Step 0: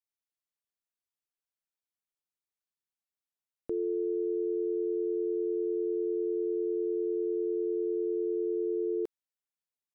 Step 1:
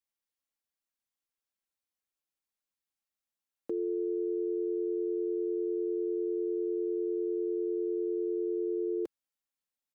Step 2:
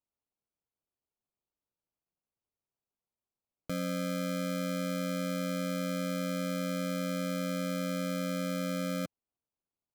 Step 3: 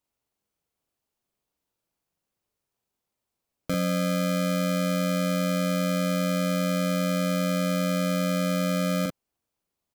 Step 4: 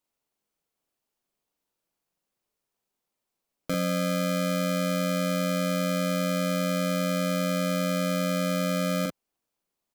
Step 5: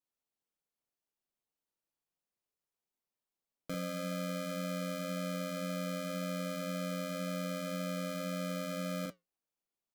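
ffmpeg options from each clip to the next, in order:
ffmpeg -i in.wav -filter_complex "[0:a]aecho=1:1:3.7:0.4,acrossover=split=130[link_01][link_02];[link_01]aeval=exprs='(mod(631*val(0)+1,2)-1)/631':channel_layout=same[link_03];[link_03][link_02]amix=inputs=2:normalize=0" out.wav
ffmpeg -i in.wav -af "aeval=exprs='val(0)*sin(2*PI*170*n/s)':channel_layout=same,tiltshelf=frequency=630:gain=5,acrusher=samples=24:mix=1:aa=0.000001,volume=-1dB" out.wav
ffmpeg -i in.wav -filter_complex "[0:a]asplit=2[link_01][link_02];[link_02]adelay=43,volume=-3dB[link_03];[link_01][link_03]amix=inputs=2:normalize=0,volume=8dB" out.wav
ffmpeg -i in.wav -af "equalizer=frequency=78:width_type=o:width=1.2:gain=-11" out.wav
ffmpeg -i in.wav -af "flanger=delay=6.2:depth=2.6:regen=-74:speed=1.9:shape=triangular,volume=-6.5dB" out.wav

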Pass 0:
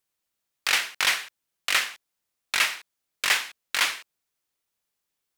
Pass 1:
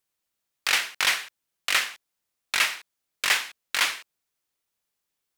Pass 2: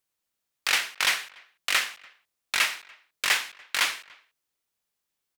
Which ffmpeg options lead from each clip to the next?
ffmpeg -i in.wav -af anull out.wav
ffmpeg -i in.wav -filter_complex "[0:a]asplit=2[link_01][link_02];[link_02]adelay=290,highpass=300,lowpass=3400,asoftclip=type=hard:threshold=-16.5dB,volume=-25dB[link_03];[link_01][link_03]amix=inputs=2:normalize=0,volume=-1dB" out.wav

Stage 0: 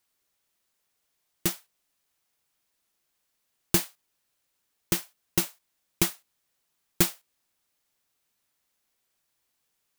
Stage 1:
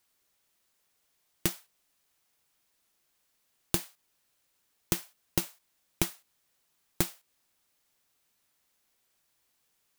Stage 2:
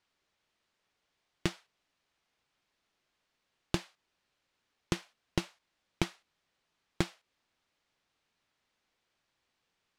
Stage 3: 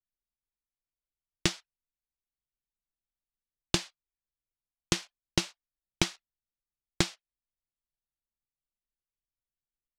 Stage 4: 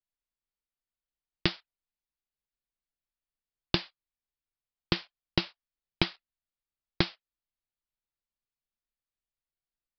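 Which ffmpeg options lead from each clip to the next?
ffmpeg -i in.wav -filter_complex "[0:a]acompressor=threshold=-30dB:ratio=10,asplit=2[link_01][link_02];[link_02]acrusher=bits=4:mix=0:aa=0.000001,volume=-8dB[link_03];[link_01][link_03]amix=inputs=2:normalize=0,volume=2.5dB" out.wav
ffmpeg -i in.wav -af "lowpass=4100" out.wav
ffmpeg -i in.wav -af "anlmdn=0.00001,equalizer=frequency=6100:width_type=o:width=2.3:gain=10.5,volume=2dB" out.wav
ffmpeg -i in.wav -filter_complex "[0:a]asplit=2[link_01][link_02];[link_02]acrusher=bits=6:mix=0:aa=0.000001,volume=-11.5dB[link_03];[link_01][link_03]amix=inputs=2:normalize=0,aresample=11025,aresample=44100,volume=-1.5dB" out.wav

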